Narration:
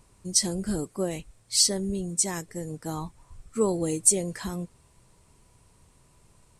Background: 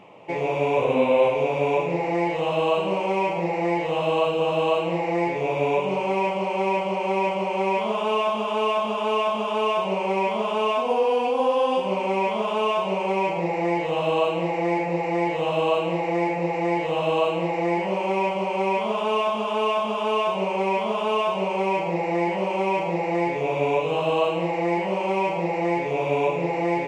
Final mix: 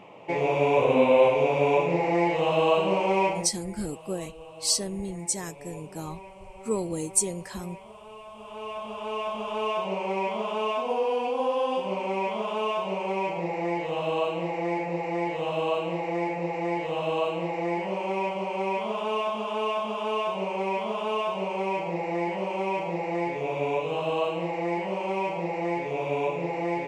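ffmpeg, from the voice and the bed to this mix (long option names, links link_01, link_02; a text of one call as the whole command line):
ffmpeg -i stem1.wav -i stem2.wav -filter_complex "[0:a]adelay=3100,volume=-3.5dB[link_01];[1:a]volume=17dB,afade=type=out:start_time=3.26:duration=0.25:silence=0.0794328,afade=type=in:start_time=8.27:duration=1.48:silence=0.141254[link_02];[link_01][link_02]amix=inputs=2:normalize=0" out.wav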